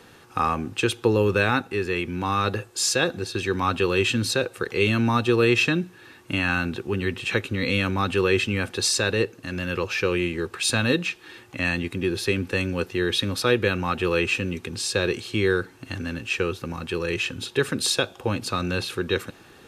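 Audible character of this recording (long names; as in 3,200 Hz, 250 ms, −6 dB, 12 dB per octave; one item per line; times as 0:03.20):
background noise floor −50 dBFS
spectral slope −4.0 dB per octave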